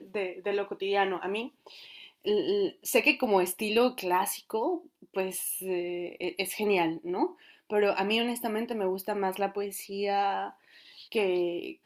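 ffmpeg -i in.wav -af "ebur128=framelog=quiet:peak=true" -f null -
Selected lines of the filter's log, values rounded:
Integrated loudness:
  I:         -29.5 LUFS
  Threshold: -39.9 LUFS
Loudness range:
  LRA:         3.5 LU
  Threshold: -49.6 LUFS
  LRA low:   -31.4 LUFS
  LRA high:  -27.8 LUFS
True peak:
  Peak:       -9.4 dBFS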